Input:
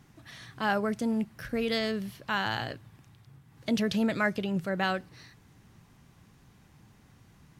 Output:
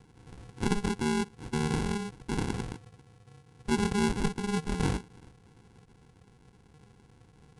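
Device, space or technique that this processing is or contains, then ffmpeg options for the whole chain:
crushed at another speed: -af "asetrate=88200,aresample=44100,acrusher=samples=36:mix=1:aa=0.000001,asetrate=22050,aresample=44100"

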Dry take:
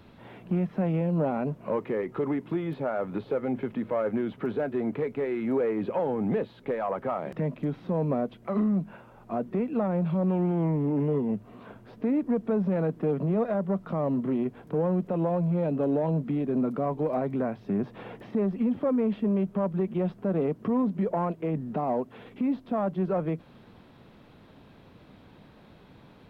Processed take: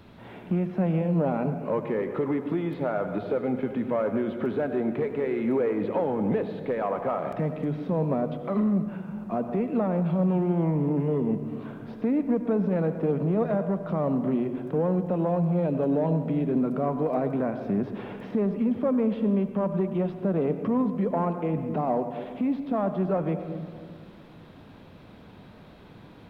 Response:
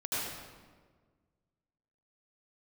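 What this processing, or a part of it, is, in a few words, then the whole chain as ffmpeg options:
ducked reverb: -filter_complex "[0:a]asplit=3[link_01][link_02][link_03];[1:a]atrim=start_sample=2205[link_04];[link_02][link_04]afir=irnorm=-1:irlink=0[link_05];[link_03]apad=whole_len=1159583[link_06];[link_05][link_06]sidechaincompress=threshold=-30dB:ratio=8:attack=43:release=1170,volume=-7dB[link_07];[link_01][link_07]amix=inputs=2:normalize=0"

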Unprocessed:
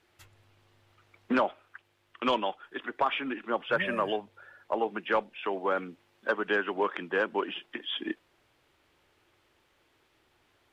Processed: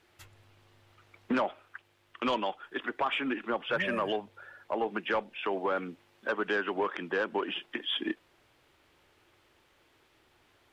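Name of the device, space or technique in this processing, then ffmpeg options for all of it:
soft clipper into limiter: -af "asoftclip=type=tanh:threshold=-18dB,alimiter=limit=-24dB:level=0:latency=1:release=117,volume=2.5dB"

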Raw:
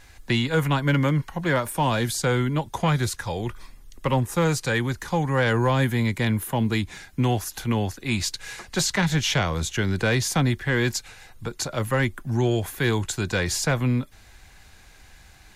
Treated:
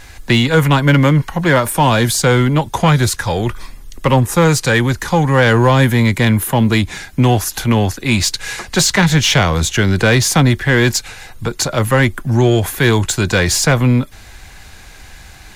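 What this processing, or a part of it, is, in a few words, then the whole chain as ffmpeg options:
parallel distortion: -filter_complex "[0:a]asplit=2[link_01][link_02];[link_02]asoftclip=type=hard:threshold=-28.5dB,volume=-6.5dB[link_03];[link_01][link_03]amix=inputs=2:normalize=0,volume=9dB"

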